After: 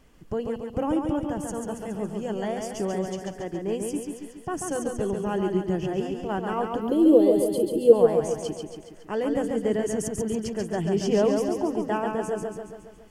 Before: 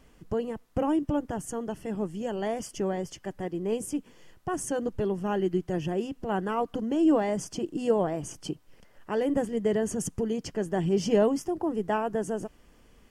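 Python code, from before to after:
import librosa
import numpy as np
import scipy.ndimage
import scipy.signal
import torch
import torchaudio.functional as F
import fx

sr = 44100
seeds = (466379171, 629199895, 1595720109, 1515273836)

y = fx.curve_eq(x, sr, hz=(260.0, 490.0, 760.0, 1600.0, 2500.0, 4100.0, 5700.0, 11000.0), db=(0, 12, -8, -16, -9, 10, -18, 14), at=(6.81, 7.93))
y = fx.echo_feedback(y, sr, ms=139, feedback_pct=56, wet_db=-4.5)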